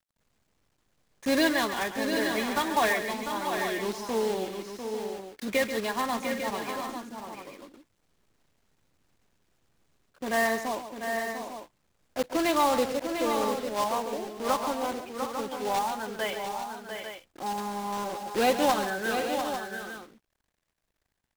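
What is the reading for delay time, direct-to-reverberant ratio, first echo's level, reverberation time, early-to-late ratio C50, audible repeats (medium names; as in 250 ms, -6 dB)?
137 ms, no reverb, -10.5 dB, no reverb, no reverb, 4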